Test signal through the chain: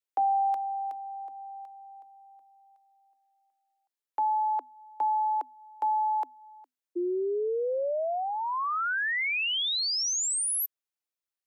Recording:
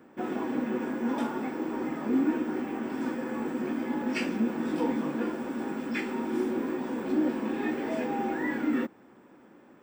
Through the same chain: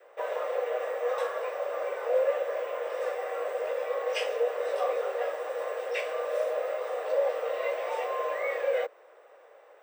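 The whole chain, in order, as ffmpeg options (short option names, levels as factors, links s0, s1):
-af "afreqshift=250,adynamicequalizer=threshold=0.0126:dfrequency=830:dqfactor=3:tfrequency=830:tqfactor=3:attack=5:release=100:ratio=0.375:range=2:mode=cutabove:tftype=bell"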